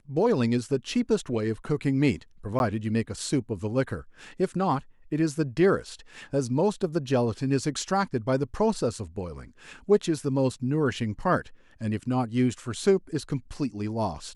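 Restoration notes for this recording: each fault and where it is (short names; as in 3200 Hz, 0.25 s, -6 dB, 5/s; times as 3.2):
2.59–2.6 gap 11 ms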